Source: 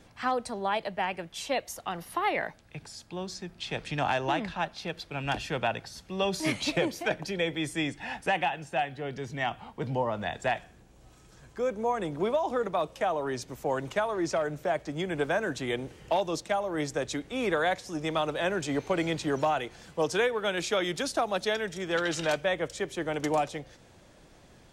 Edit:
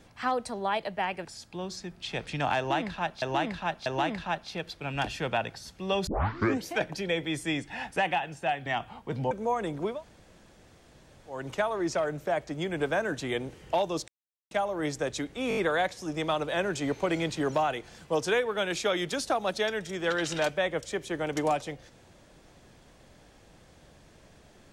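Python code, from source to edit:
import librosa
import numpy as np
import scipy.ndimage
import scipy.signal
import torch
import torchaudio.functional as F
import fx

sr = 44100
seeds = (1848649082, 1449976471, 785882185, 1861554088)

y = fx.edit(x, sr, fx.cut(start_s=1.25, length_s=1.58),
    fx.repeat(start_s=4.16, length_s=0.64, count=3),
    fx.tape_start(start_s=6.37, length_s=0.59),
    fx.cut(start_s=8.96, length_s=0.41),
    fx.cut(start_s=10.02, length_s=1.67),
    fx.room_tone_fill(start_s=12.3, length_s=1.46, crossfade_s=0.24),
    fx.insert_silence(at_s=16.46, length_s=0.43),
    fx.stutter(start_s=17.44, slice_s=0.02, count=5), tone=tone)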